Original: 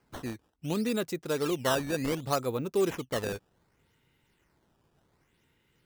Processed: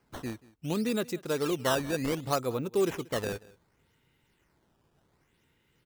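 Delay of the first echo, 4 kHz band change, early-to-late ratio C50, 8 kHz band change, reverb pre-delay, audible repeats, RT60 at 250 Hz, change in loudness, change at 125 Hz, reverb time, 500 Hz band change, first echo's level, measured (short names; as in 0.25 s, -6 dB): 0.183 s, 0.0 dB, none, 0.0 dB, none, 1, none, 0.0 dB, 0.0 dB, none, 0.0 dB, -22.0 dB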